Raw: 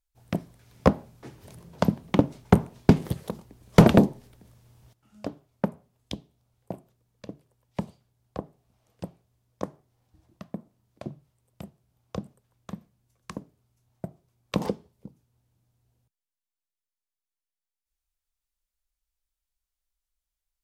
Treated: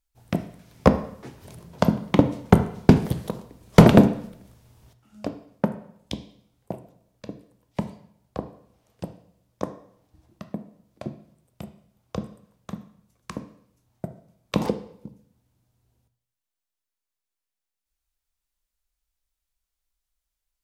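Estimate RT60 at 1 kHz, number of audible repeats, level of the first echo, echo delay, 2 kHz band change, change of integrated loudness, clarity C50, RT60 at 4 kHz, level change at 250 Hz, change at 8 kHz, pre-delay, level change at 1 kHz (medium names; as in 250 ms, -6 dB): 0.70 s, no echo, no echo, no echo, +3.5 dB, +3.0 dB, 13.0 dB, 0.65 s, +3.5 dB, +3.0 dB, 6 ms, +3.5 dB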